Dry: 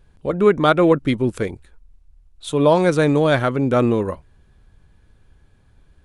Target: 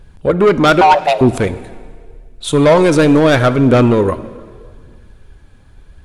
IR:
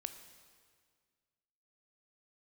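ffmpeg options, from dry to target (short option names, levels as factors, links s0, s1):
-filter_complex "[0:a]asettb=1/sr,asplit=3[s0][s1][s2];[s0]atrim=end=0.814[s3];[s1]atrim=start=0.81:end=1.21,asetpts=PTS-STARTPTS,afade=t=in:d=0.004:c=qsin,afade=t=out:st=0.396:d=0.004:c=qsin,afreqshift=430[s4];[s2]atrim=start=1.206[s5];[s3][s4]acrossfade=d=0.004:c1=hsin:c2=qsin[s6];[s6][s5]acrossfade=d=0.004:c1=qsin:c2=hsin,asoftclip=type=tanh:threshold=0.178,asplit=2[s7][s8];[1:a]atrim=start_sample=2205[s9];[s8][s9]afir=irnorm=-1:irlink=0,volume=1.68[s10];[s7][s10]amix=inputs=2:normalize=0,aphaser=in_gain=1:out_gain=1:delay=4.1:decay=0.25:speed=0.81:type=triangular,volume=1.41"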